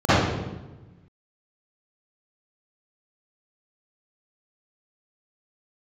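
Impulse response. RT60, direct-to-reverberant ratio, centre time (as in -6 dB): 1.1 s, -18.5 dB, 0.111 s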